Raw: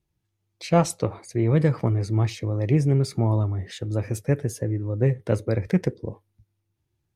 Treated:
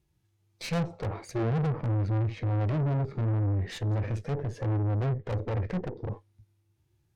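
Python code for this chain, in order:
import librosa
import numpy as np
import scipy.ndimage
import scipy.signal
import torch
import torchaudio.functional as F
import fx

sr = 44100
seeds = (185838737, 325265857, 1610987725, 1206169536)

y = fx.env_lowpass_down(x, sr, base_hz=650.0, full_db=-17.0)
y = fx.tube_stage(y, sr, drive_db=34.0, bias=0.6)
y = fx.hpss(y, sr, part='harmonic', gain_db=8)
y = y * librosa.db_to_amplitude(1.0)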